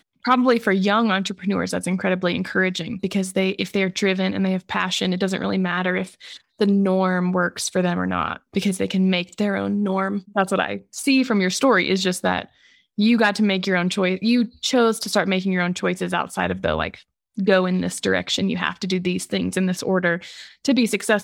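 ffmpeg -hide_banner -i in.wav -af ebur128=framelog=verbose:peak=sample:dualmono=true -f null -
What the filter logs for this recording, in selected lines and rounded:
Integrated loudness:
  I:         -18.2 LUFS
  Threshold: -28.4 LUFS
Loudness range:
  LRA:         2.4 LU
  Threshold: -38.5 LUFS
  LRA low:   -19.4 LUFS
  LRA high:  -17.0 LUFS
Sample peak:
  Peak:       -4.1 dBFS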